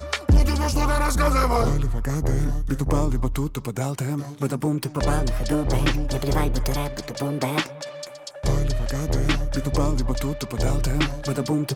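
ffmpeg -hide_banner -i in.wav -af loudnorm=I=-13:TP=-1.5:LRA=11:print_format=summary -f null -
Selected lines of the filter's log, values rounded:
Input Integrated:    -24.5 LUFS
Input True Peak:     -10.2 dBTP
Input LRA:             2.2 LU
Input Threshold:     -34.6 LUFS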